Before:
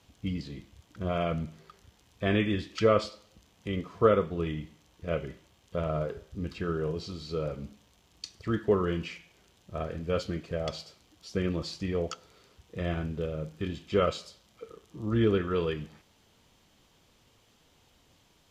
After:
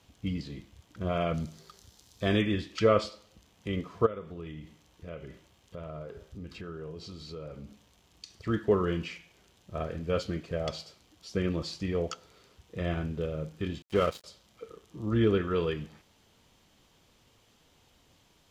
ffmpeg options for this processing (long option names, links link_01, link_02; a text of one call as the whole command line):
ffmpeg -i in.wav -filter_complex "[0:a]asettb=1/sr,asplit=3[link_01][link_02][link_03];[link_01]atrim=end=1.344[link_04];[link_02]atrim=start=1.34:end=2.42,asetpts=PTS-STARTPTS,afade=type=in:duration=0.004:curve=qsin,afade=type=out:start_time=1.076:duration=0.004:curve=qsin,highshelf=frequency=3400:width_type=q:width=1.5:gain=7.5[link_05];[link_03]atrim=start=2.416[link_06];[link_04][link_05]acrossfade=duration=0.004:curve1=hsin:curve2=qsin[link_07];[link_07][link_06]acrossfade=duration=0.004:curve1=qsin:curve2=hsin,asplit=3[link_08][link_09][link_10];[link_08]afade=type=out:start_time=4.05:duration=0.02[link_11];[link_09]acompressor=threshold=-42dB:ratio=2.5:attack=3.2:release=140:knee=1:detection=peak,afade=type=in:start_time=4.05:duration=0.02,afade=type=out:start_time=8.34:duration=0.02[link_12];[link_10]afade=type=in:start_time=8.34:duration=0.02[link_13];[link_11][link_12][link_13]amix=inputs=3:normalize=0,asettb=1/sr,asplit=3[link_14][link_15][link_16];[link_14]atrim=end=13.824[link_17];[link_15]atrim=start=13.82:end=14.24,asetpts=PTS-STARTPTS,afade=type=in:duration=0.004:curve=qsin,afade=type=out:start_time=0.416:duration=0.004:curve=qsin,aeval=exprs='sgn(val(0))*max(abs(val(0))-0.01,0)':channel_layout=same[link_18];[link_16]atrim=start=14.236[link_19];[link_17][link_18]acrossfade=duration=0.004:curve1=hsin:curve2=qsin[link_20];[link_20][link_19]acrossfade=duration=0.004:curve1=qsin:curve2=hsin" out.wav